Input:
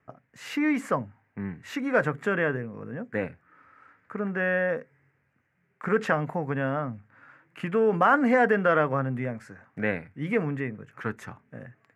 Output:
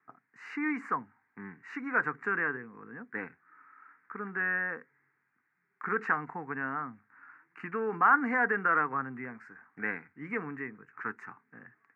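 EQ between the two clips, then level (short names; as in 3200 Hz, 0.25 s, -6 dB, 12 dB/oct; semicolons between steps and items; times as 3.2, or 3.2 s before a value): BPF 350–2900 Hz; fixed phaser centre 1400 Hz, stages 4; 0.0 dB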